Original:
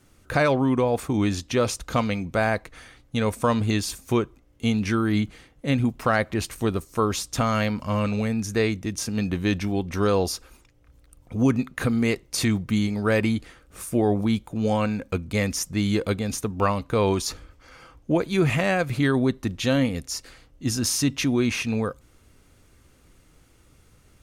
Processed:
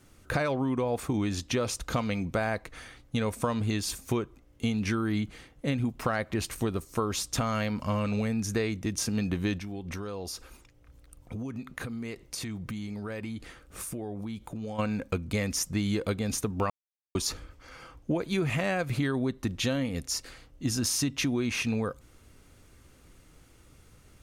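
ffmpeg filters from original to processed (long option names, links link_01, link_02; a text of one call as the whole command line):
ffmpeg -i in.wav -filter_complex "[0:a]asplit=3[link_01][link_02][link_03];[link_01]afade=type=out:start_time=9.58:duration=0.02[link_04];[link_02]acompressor=threshold=-33dB:ratio=8:attack=3.2:release=140:knee=1:detection=peak,afade=type=in:start_time=9.58:duration=0.02,afade=type=out:start_time=14.78:duration=0.02[link_05];[link_03]afade=type=in:start_time=14.78:duration=0.02[link_06];[link_04][link_05][link_06]amix=inputs=3:normalize=0,asplit=3[link_07][link_08][link_09];[link_07]atrim=end=16.7,asetpts=PTS-STARTPTS,afade=type=out:start_time=16.696:duration=0.004:curve=hsin[link_10];[link_08]atrim=start=16.7:end=17.15,asetpts=PTS-STARTPTS,volume=0[link_11];[link_09]atrim=start=17.15,asetpts=PTS-STARTPTS,afade=type=in:duration=0.004:curve=hsin[link_12];[link_10][link_11][link_12]concat=n=3:v=0:a=1,acompressor=threshold=-25dB:ratio=6" out.wav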